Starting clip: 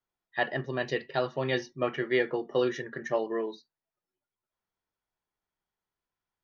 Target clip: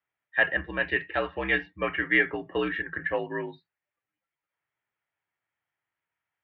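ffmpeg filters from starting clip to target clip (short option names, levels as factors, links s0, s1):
-af "highpass=f=150:t=q:w=0.5412,highpass=f=150:t=q:w=1.307,lowpass=f=3300:t=q:w=0.5176,lowpass=f=3300:t=q:w=0.7071,lowpass=f=3300:t=q:w=1.932,afreqshift=-65,equalizer=f=125:t=o:w=1:g=4,equalizer=f=250:t=o:w=1:g=-6,equalizer=f=2000:t=o:w=1:g=11"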